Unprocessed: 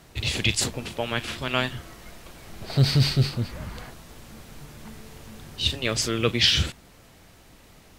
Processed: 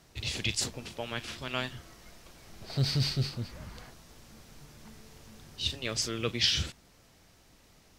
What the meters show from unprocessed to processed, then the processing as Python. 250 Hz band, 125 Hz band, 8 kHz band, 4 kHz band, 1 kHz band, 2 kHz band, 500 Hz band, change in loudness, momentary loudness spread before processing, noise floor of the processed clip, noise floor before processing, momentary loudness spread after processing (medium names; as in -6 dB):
-9.0 dB, -9.0 dB, -5.5 dB, -7.0 dB, -9.0 dB, -8.5 dB, -9.0 dB, -7.5 dB, 23 LU, -61 dBFS, -53 dBFS, 20 LU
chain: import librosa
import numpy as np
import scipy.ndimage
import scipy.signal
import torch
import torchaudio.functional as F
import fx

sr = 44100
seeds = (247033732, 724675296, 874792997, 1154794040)

y = fx.peak_eq(x, sr, hz=5500.0, db=5.5, octaves=0.76)
y = F.gain(torch.from_numpy(y), -9.0).numpy()